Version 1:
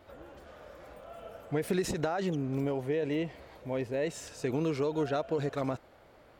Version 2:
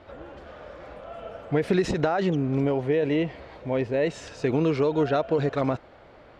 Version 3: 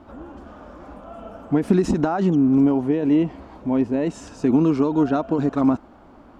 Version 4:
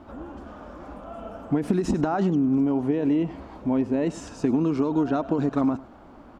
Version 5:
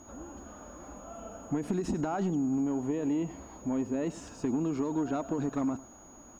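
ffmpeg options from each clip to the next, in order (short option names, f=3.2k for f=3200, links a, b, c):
-af "lowpass=4.3k,volume=7.5dB"
-af "equalizer=f=125:t=o:w=1:g=-9,equalizer=f=250:t=o:w=1:g=10,equalizer=f=500:t=o:w=1:g=-12,equalizer=f=1k:t=o:w=1:g=3,equalizer=f=2k:t=o:w=1:g=-12,equalizer=f=4k:t=o:w=1:g=-10,volume=6.5dB"
-af "acompressor=threshold=-19dB:ratio=6,aecho=1:1:100:0.119"
-af "acrusher=bits=10:mix=0:aa=0.000001,asoftclip=type=tanh:threshold=-14.5dB,aeval=exprs='val(0)+0.00398*sin(2*PI*6700*n/s)':c=same,volume=-6.5dB"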